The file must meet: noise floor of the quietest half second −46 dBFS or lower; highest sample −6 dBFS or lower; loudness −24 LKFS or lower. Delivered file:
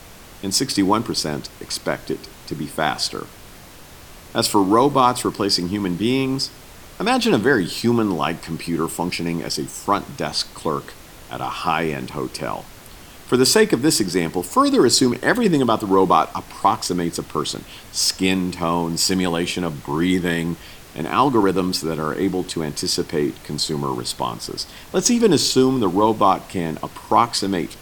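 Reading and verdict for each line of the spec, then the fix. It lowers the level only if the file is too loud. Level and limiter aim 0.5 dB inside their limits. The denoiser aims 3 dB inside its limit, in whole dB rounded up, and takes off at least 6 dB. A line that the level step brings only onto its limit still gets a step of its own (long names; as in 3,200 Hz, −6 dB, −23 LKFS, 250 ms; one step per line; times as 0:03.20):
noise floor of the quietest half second −42 dBFS: out of spec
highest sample −2.5 dBFS: out of spec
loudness −20.0 LKFS: out of spec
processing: level −4.5 dB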